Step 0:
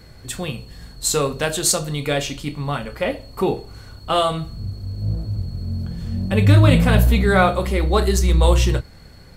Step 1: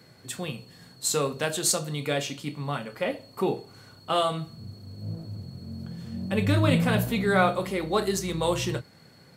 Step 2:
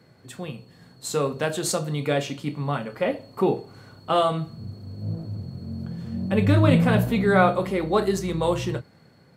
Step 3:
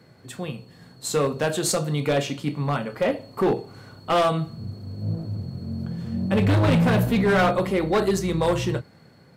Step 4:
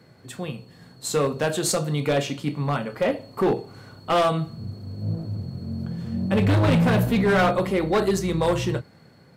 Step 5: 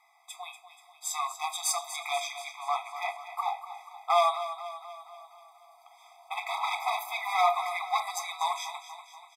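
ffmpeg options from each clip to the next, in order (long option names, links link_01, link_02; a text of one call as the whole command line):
ffmpeg -i in.wav -af "highpass=frequency=120:width=0.5412,highpass=frequency=120:width=1.3066,volume=-6dB" out.wav
ffmpeg -i in.wav -af "highshelf=frequency=2500:gain=-9.5,dynaudnorm=framelen=340:gausssize=7:maxgain=5dB" out.wav
ffmpeg -i in.wav -af "asoftclip=type=hard:threshold=-18dB,volume=2.5dB" out.wav
ffmpeg -i in.wav -af anull out.wav
ffmpeg -i in.wav -filter_complex "[0:a]asplit=2[link_01][link_02];[link_02]aecho=0:1:241|482|723|964|1205|1446:0.251|0.143|0.0816|0.0465|0.0265|0.0151[link_03];[link_01][link_03]amix=inputs=2:normalize=0,afftfilt=real='re*eq(mod(floor(b*sr/1024/650),2),1)':imag='im*eq(mod(floor(b*sr/1024/650),2),1)':win_size=1024:overlap=0.75" out.wav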